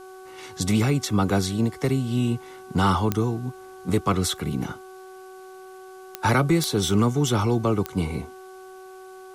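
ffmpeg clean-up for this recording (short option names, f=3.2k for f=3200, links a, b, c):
-af "adeclick=t=4,bandreject=f=376:t=h:w=4,bandreject=f=752:t=h:w=4,bandreject=f=1.128k:t=h:w=4,bandreject=f=1.504k:t=h:w=4,agate=range=-21dB:threshold=-35dB"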